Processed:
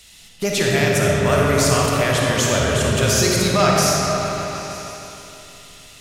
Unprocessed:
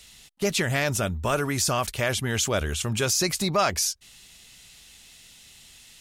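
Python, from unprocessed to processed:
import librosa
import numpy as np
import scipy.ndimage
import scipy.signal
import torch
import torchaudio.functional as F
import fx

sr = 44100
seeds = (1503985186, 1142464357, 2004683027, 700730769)

y = fx.echo_opening(x, sr, ms=154, hz=400, octaves=1, feedback_pct=70, wet_db=-3)
y = fx.rev_freeverb(y, sr, rt60_s=2.9, hf_ratio=0.7, predelay_ms=10, drr_db=-2.5)
y = y * 10.0 ** (2.5 / 20.0)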